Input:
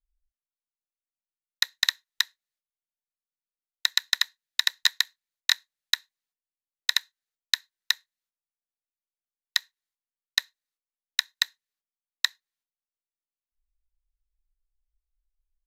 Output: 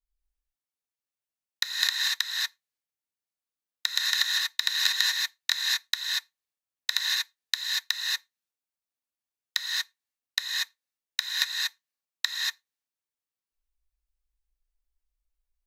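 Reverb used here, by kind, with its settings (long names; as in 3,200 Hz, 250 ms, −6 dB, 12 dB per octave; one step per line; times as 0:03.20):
reverb whose tail is shaped and stops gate 260 ms rising, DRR −4 dB
level −4 dB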